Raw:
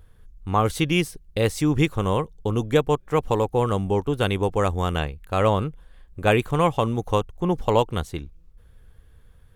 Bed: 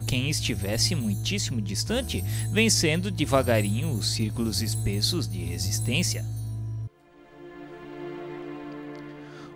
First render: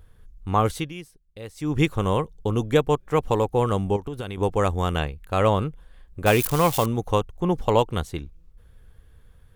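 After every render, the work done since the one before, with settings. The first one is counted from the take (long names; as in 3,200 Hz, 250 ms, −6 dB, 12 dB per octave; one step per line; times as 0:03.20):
0:00.65–0:01.83: duck −16.5 dB, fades 0.28 s
0:03.96–0:04.38: downward compressor 8 to 1, threshold −27 dBFS
0:06.26–0:06.86: spike at every zero crossing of −18 dBFS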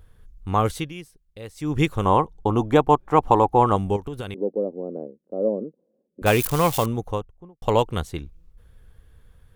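0:02.05–0:03.76: drawn EQ curve 170 Hz 0 dB, 330 Hz +6 dB, 480 Hz 0 dB, 830 Hz +12 dB, 1,700 Hz 0 dB, 15,000 Hz −7 dB
0:04.34–0:06.22: Chebyshev band-pass filter 210–570 Hz, order 3
0:06.77–0:07.62: fade out and dull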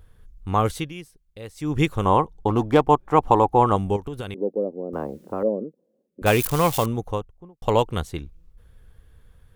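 0:02.48–0:02.89: windowed peak hold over 3 samples
0:04.93–0:05.43: every bin compressed towards the loudest bin 4 to 1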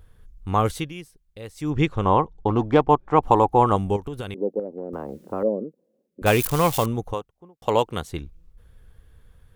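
0:01.70–0:03.23: high-frequency loss of the air 100 metres
0:04.59–0:05.26: downward compressor, threshold −26 dBFS
0:07.13–0:08.09: high-pass filter 380 Hz → 150 Hz 6 dB per octave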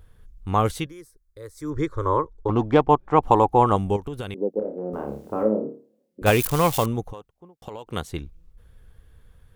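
0:00.86–0:02.49: phaser with its sweep stopped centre 750 Hz, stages 6
0:04.52–0:06.30: flutter between parallel walls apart 4.8 metres, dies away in 0.39 s
0:07.03–0:07.87: downward compressor 12 to 1, threshold −32 dBFS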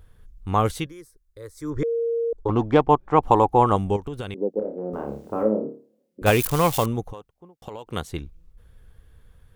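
0:01.83–0:02.33: beep over 464 Hz −21 dBFS
0:03.84–0:05.33: parametric band 12,000 Hz −8 dB 0.35 octaves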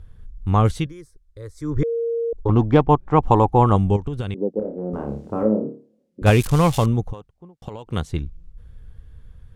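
Bessel low-pass filter 7,800 Hz, order 2
bass and treble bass +9 dB, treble +1 dB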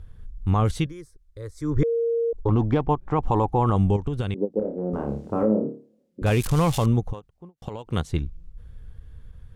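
brickwall limiter −11 dBFS, peak gain reduction 9.5 dB
every ending faded ahead of time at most 470 dB per second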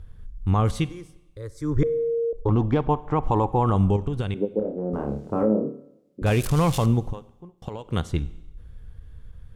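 four-comb reverb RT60 0.91 s, combs from 31 ms, DRR 17 dB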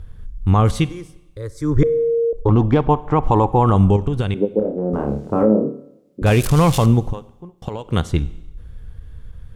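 level +6.5 dB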